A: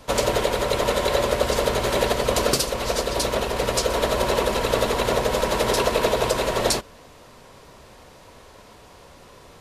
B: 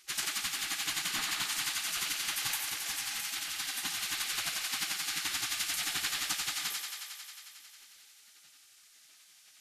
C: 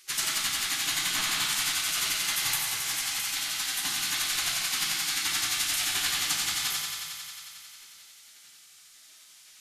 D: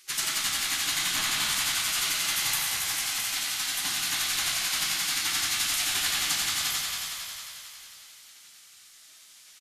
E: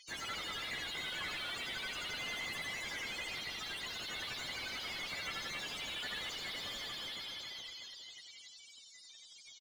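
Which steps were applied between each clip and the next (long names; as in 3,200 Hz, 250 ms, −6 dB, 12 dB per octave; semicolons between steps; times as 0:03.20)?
gate on every frequency bin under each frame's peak −20 dB weak; on a send: feedback echo with a high-pass in the loop 90 ms, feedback 83%, high-pass 310 Hz, level −6.5 dB; on the sum: level −3 dB
high-shelf EQ 5,000 Hz +4.5 dB; convolution reverb RT60 1.0 s, pre-delay 7 ms, DRR 0 dB; level +1.5 dB
echo with shifted repeats 283 ms, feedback 41%, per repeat −59 Hz, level −7 dB
spectral peaks only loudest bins 16; mid-hump overdrive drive 30 dB, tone 1,100 Hz, clips at −23.5 dBFS; far-end echo of a speakerphone 90 ms, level −9 dB; level −4 dB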